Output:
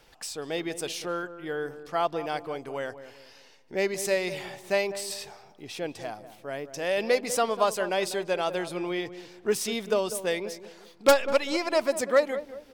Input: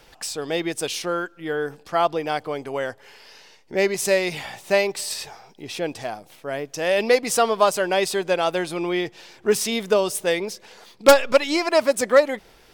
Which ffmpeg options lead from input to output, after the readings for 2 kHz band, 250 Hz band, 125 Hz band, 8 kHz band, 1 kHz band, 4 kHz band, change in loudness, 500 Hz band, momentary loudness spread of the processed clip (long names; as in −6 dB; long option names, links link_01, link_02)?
−6.5 dB, −6.0 dB, −6.0 dB, −6.5 dB, −6.5 dB, −6.5 dB, −6.5 dB, −6.5 dB, 14 LU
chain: -filter_complex "[0:a]asplit=2[link_01][link_02];[link_02]adelay=196,lowpass=frequency=920:poles=1,volume=-11dB,asplit=2[link_03][link_04];[link_04]adelay=196,lowpass=frequency=920:poles=1,volume=0.41,asplit=2[link_05][link_06];[link_06]adelay=196,lowpass=frequency=920:poles=1,volume=0.41,asplit=2[link_07][link_08];[link_08]adelay=196,lowpass=frequency=920:poles=1,volume=0.41[link_09];[link_01][link_03][link_05][link_07][link_09]amix=inputs=5:normalize=0,volume=-6.5dB"